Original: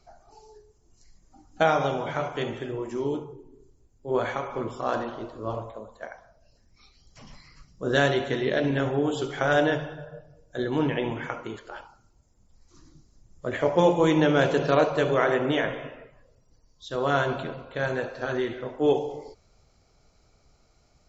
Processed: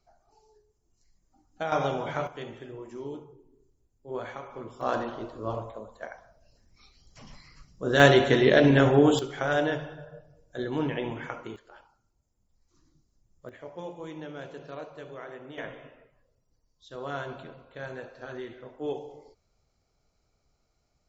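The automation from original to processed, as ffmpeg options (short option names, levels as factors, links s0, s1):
-af "asetnsamples=n=441:p=0,asendcmd='1.72 volume volume -2dB;2.27 volume volume -9.5dB;4.81 volume volume -1dB;8 volume volume 6dB;9.19 volume volume -4dB;11.56 volume volume -12dB;13.49 volume volume -19.5dB;15.58 volume volume -11dB',volume=0.282"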